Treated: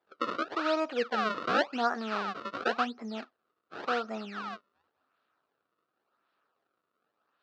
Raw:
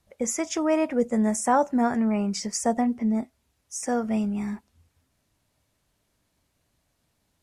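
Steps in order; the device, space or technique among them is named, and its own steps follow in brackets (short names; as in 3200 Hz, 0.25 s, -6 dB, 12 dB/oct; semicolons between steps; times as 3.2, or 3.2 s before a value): circuit-bent sampling toy (decimation with a swept rate 31×, swing 160% 0.91 Hz; speaker cabinet 540–4000 Hz, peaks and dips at 600 Hz -4 dB, 920 Hz -4 dB, 1300 Hz +9 dB, 2100 Hz -9 dB, 3200 Hz -5 dB)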